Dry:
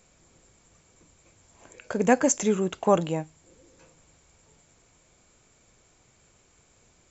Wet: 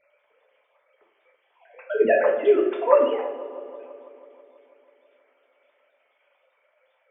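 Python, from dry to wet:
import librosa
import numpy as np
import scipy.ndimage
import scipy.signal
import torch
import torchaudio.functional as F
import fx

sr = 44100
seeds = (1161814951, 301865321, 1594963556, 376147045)

y = fx.sine_speech(x, sr)
y = fx.echo_wet_lowpass(y, sr, ms=163, feedback_pct=72, hz=1000.0, wet_db=-14.0)
y = fx.rev_double_slope(y, sr, seeds[0], early_s=0.47, late_s=2.2, knee_db=-18, drr_db=-1.5)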